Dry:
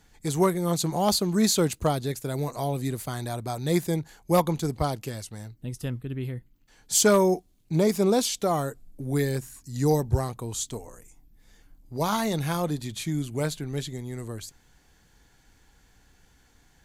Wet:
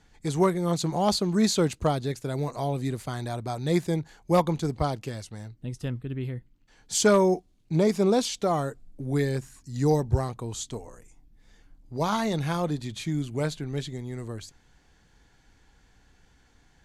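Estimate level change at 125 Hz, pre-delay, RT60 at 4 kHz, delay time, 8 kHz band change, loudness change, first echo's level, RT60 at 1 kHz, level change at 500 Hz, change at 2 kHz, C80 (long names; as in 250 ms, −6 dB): 0.0 dB, no reverb audible, no reverb audible, no echo audible, −5.0 dB, −0.5 dB, no echo audible, no reverb audible, 0.0 dB, −0.5 dB, no reverb audible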